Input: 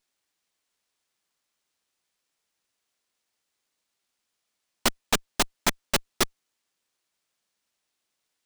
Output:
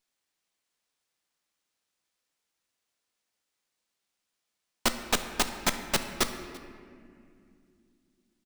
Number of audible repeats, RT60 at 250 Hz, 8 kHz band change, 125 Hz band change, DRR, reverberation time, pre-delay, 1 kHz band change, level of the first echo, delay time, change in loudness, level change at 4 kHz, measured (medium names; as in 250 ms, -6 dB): 1, 4.0 s, -2.5 dB, -2.0 dB, 7.0 dB, 2.4 s, 4 ms, -2.0 dB, -22.5 dB, 339 ms, -2.5 dB, -2.5 dB